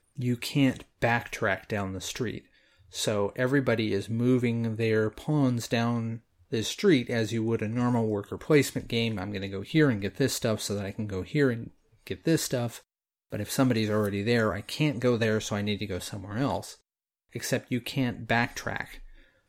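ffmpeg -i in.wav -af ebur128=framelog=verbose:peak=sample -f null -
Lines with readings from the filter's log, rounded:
Integrated loudness:
  I:         -28.2 LUFS
  Threshold: -38.6 LUFS
Loudness range:
  LRA:         3.5 LU
  Threshold: -48.5 LUFS
  LRA low:   -30.7 LUFS
  LRA high:  -27.2 LUFS
Sample peak:
  Peak:       -9.7 dBFS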